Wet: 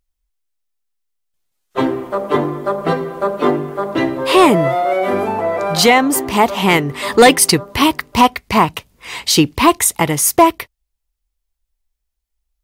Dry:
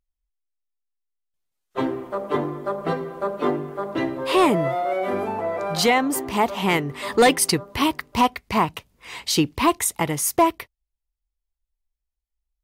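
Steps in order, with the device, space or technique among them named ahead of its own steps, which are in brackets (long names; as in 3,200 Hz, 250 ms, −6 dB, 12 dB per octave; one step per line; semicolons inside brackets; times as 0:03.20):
exciter from parts (in parallel at −9.5 dB: high-pass filter 3,400 Hz 6 dB per octave + soft clipping −24.5 dBFS, distortion −9 dB)
on the sum: level +7.5 dB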